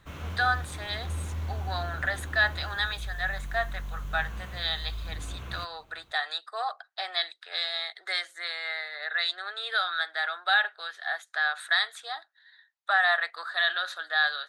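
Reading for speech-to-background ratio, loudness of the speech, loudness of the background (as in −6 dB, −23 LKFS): 9.5 dB, −29.0 LKFS, −38.5 LKFS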